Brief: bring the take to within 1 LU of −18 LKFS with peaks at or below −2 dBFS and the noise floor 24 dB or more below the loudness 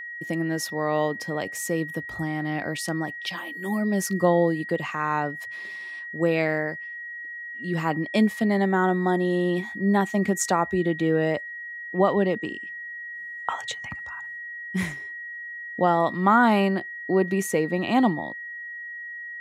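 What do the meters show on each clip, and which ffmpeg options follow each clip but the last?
interfering tone 1,900 Hz; level of the tone −34 dBFS; integrated loudness −25.5 LKFS; sample peak −7.5 dBFS; target loudness −18.0 LKFS
→ -af "bandreject=frequency=1900:width=30"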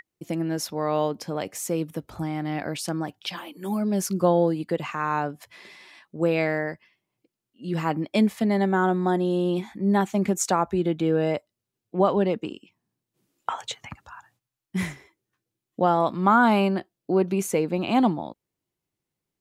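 interfering tone none found; integrated loudness −25.0 LKFS; sample peak −8.0 dBFS; target loudness −18.0 LKFS
→ -af "volume=7dB,alimiter=limit=-2dB:level=0:latency=1"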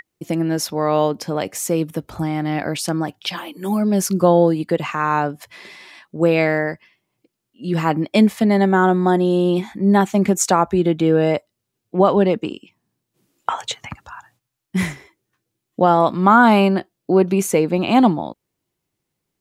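integrated loudness −18.0 LKFS; sample peak −2.0 dBFS; background noise floor −79 dBFS

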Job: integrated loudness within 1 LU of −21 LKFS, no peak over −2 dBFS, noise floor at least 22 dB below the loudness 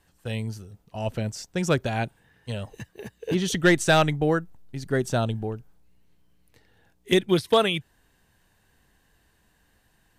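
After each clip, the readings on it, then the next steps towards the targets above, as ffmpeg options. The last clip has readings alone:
integrated loudness −25.0 LKFS; sample peak −10.0 dBFS; target loudness −21.0 LKFS
→ -af "volume=4dB"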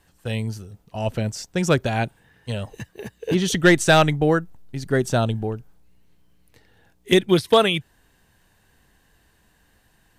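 integrated loudness −21.0 LKFS; sample peak −6.0 dBFS; background noise floor −62 dBFS

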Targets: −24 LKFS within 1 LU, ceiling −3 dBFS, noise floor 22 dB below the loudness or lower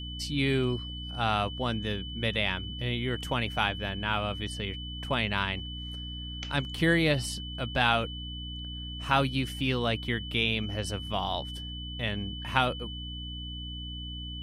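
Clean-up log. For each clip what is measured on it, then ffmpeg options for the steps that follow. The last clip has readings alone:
mains hum 60 Hz; hum harmonics up to 300 Hz; level of the hum −37 dBFS; interfering tone 3,000 Hz; level of the tone −40 dBFS; integrated loudness −30.5 LKFS; sample peak −8.0 dBFS; target loudness −24.0 LKFS
→ -af "bandreject=frequency=60:width_type=h:width=6,bandreject=frequency=120:width_type=h:width=6,bandreject=frequency=180:width_type=h:width=6,bandreject=frequency=240:width_type=h:width=6,bandreject=frequency=300:width_type=h:width=6"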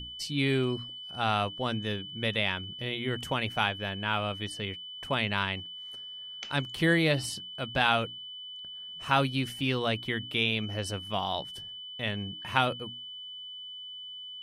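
mains hum none found; interfering tone 3,000 Hz; level of the tone −40 dBFS
→ -af "bandreject=frequency=3000:width=30"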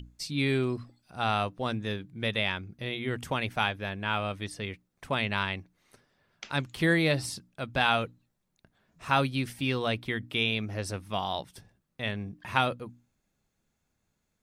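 interfering tone none found; integrated loudness −30.5 LKFS; sample peak −8.0 dBFS; target loudness −24.0 LKFS
→ -af "volume=6.5dB,alimiter=limit=-3dB:level=0:latency=1"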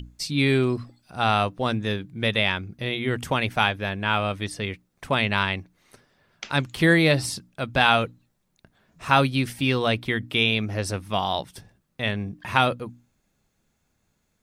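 integrated loudness −24.0 LKFS; sample peak −3.0 dBFS; background noise floor −72 dBFS

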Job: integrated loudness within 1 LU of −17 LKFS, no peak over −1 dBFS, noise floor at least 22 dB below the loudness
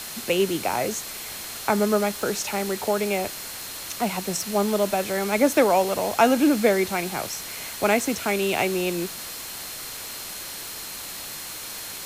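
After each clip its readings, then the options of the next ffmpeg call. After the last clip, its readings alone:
interfering tone 4,200 Hz; level of the tone −44 dBFS; background noise floor −36 dBFS; target noise floor −47 dBFS; integrated loudness −24.5 LKFS; sample peak −6.0 dBFS; target loudness −17.0 LKFS
→ -af "bandreject=frequency=4200:width=30"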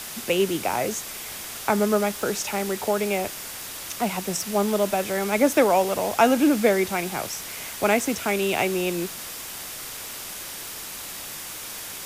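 interfering tone none found; background noise floor −36 dBFS; target noise floor −47 dBFS
→ -af "afftdn=noise_reduction=11:noise_floor=-36"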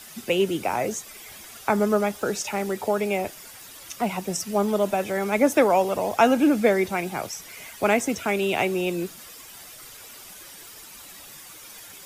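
background noise floor −44 dBFS; target noise floor −46 dBFS
→ -af "afftdn=noise_reduction=6:noise_floor=-44"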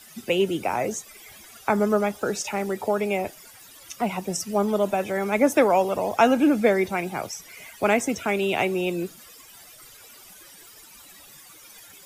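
background noise floor −48 dBFS; integrated loudness −24.0 LKFS; sample peak −6.5 dBFS; target loudness −17.0 LKFS
→ -af "volume=7dB,alimiter=limit=-1dB:level=0:latency=1"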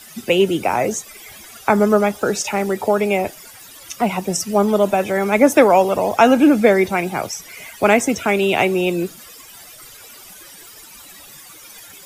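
integrated loudness −17.0 LKFS; sample peak −1.0 dBFS; background noise floor −41 dBFS

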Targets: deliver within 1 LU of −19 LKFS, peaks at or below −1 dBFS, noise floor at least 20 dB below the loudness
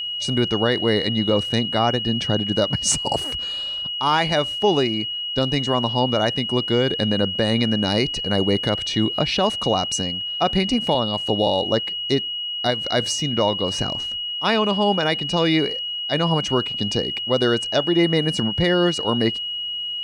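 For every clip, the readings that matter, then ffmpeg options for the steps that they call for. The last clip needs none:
interfering tone 2,900 Hz; level of the tone −25 dBFS; integrated loudness −20.5 LKFS; sample peak −7.5 dBFS; target loudness −19.0 LKFS
→ -af "bandreject=frequency=2900:width=30"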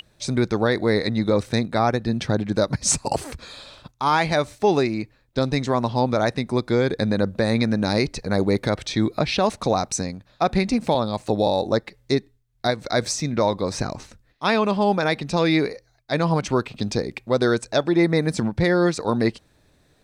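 interfering tone none found; integrated loudness −22.5 LKFS; sample peak −8.5 dBFS; target loudness −19.0 LKFS
→ -af "volume=3.5dB"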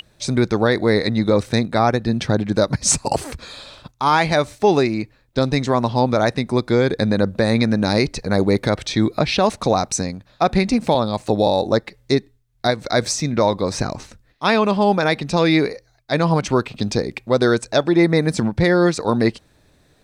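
integrated loudness −19.0 LKFS; sample peak −5.0 dBFS; background noise floor −58 dBFS

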